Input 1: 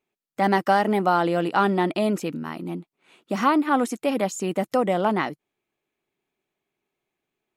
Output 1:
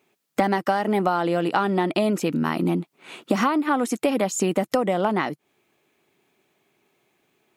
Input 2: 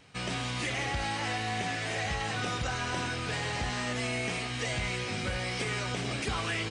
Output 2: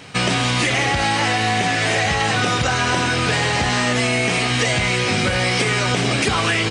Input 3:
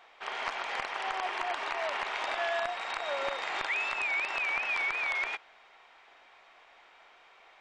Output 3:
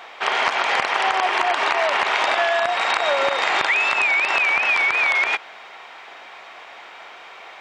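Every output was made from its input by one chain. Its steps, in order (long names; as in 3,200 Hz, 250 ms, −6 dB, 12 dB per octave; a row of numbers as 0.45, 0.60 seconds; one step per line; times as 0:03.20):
high-pass filter 88 Hz 12 dB per octave
downward compressor 12 to 1, threshold −33 dBFS
normalise the peak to −6 dBFS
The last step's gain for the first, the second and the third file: +15.0, +18.5, +17.5 decibels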